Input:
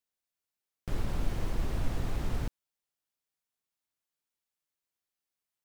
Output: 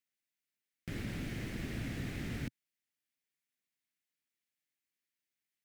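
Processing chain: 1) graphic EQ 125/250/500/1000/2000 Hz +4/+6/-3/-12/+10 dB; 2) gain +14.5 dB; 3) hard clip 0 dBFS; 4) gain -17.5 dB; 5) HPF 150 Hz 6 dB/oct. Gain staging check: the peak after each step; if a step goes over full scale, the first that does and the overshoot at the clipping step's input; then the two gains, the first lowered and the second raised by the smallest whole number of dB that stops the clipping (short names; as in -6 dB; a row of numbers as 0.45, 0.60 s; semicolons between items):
-16.5, -2.0, -2.0, -19.5, -27.0 dBFS; no overload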